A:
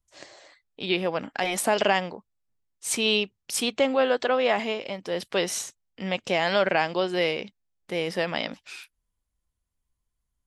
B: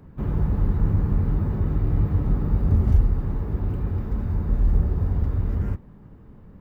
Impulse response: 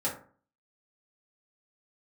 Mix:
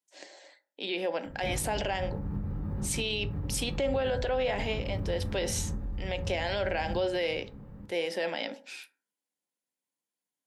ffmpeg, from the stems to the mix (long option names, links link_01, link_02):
-filter_complex "[0:a]highpass=frequency=240:width=0.5412,highpass=frequency=240:width=1.3066,equalizer=frequency=1200:width_type=o:width=0.25:gain=-13,volume=-3.5dB,asplit=2[link_01][link_02];[link_02]volume=-14.5dB[link_03];[1:a]acompressor=threshold=-28dB:ratio=6,alimiter=level_in=2.5dB:limit=-24dB:level=0:latency=1:release=11,volume=-2.5dB,adelay=1250,volume=-5dB,asplit=2[link_04][link_05];[link_05]volume=-6.5dB[link_06];[2:a]atrim=start_sample=2205[link_07];[link_03][link_06]amix=inputs=2:normalize=0[link_08];[link_08][link_07]afir=irnorm=-1:irlink=0[link_09];[link_01][link_04][link_09]amix=inputs=3:normalize=0,alimiter=limit=-21dB:level=0:latency=1:release=49"